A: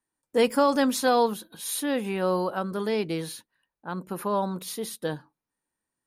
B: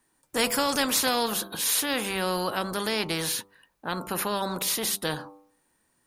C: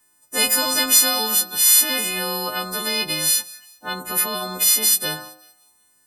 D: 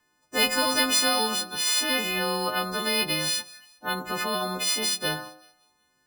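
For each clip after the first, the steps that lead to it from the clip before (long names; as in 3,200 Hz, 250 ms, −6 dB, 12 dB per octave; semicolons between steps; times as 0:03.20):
hum removal 98.48 Hz, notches 14; every bin compressed towards the loudest bin 2 to 1
every partial snapped to a pitch grid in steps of 3 semitones; feedback echo with a high-pass in the loop 188 ms, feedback 37%, high-pass 460 Hz, level −22 dB
high-frequency loss of the air 85 metres; bad sample-rate conversion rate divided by 3×, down filtered, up hold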